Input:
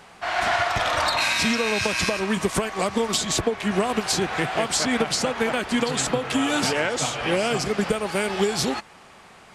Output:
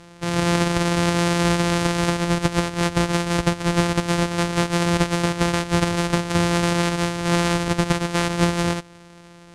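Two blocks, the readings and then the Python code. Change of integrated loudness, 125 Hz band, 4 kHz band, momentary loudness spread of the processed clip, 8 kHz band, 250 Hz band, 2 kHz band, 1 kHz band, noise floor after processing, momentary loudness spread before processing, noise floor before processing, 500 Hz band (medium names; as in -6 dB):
+2.0 dB, +11.5 dB, -1.0 dB, 3 LU, -2.0 dB, +5.0 dB, -1.0 dB, +1.0 dB, -46 dBFS, 4 LU, -48 dBFS, +0.5 dB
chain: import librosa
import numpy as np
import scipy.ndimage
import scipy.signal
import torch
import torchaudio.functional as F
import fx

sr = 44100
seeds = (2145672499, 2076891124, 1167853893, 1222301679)

y = np.r_[np.sort(x[:len(x) // 256 * 256].reshape(-1, 256), axis=1).ravel(), x[len(x) // 256 * 256:]]
y = scipy.signal.sosfilt(scipy.signal.butter(4, 10000.0, 'lowpass', fs=sr, output='sos'), y)
y = fx.notch(y, sr, hz=750.0, q=12.0)
y = y * 10.0 ** (3.0 / 20.0)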